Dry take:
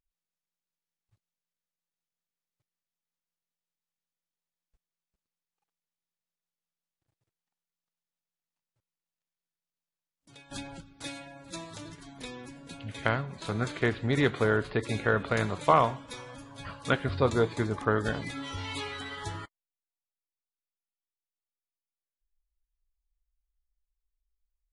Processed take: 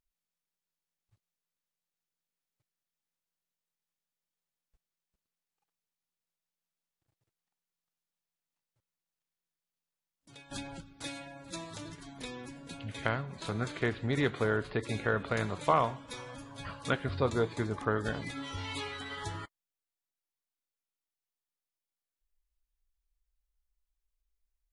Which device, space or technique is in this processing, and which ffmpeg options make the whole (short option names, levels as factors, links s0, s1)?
parallel compression: -filter_complex "[0:a]asettb=1/sr,asplit=3[s0][s1][s2];[s0]atrim=end=17.984[s3];[s1]atrim=start=17.98:end=19.1,asetpts=PTS-STARTPTS,afade=t=in:d=0.004:c=qsin,afade=t=out:st=1.116:d=0.004:c=qsin,agate=range=0.0224:threshold=0.0158:ratio=3:detection=peak[s4];[s2]atrim=start=19.096[s5];[s3][s4]acrossfade=d=0.004:c1=hsin:c2=qsin[s6];[s6][s5]acrossfade=d=0.004:c1=qsin:c2=hsin,asplit=2[s7][s8];[s8]acompressor=threshold=0.0141:ratio=6,volume=0.841[s9];[s7][s9]amix=inputs=2:normalize=0,volume=0.531"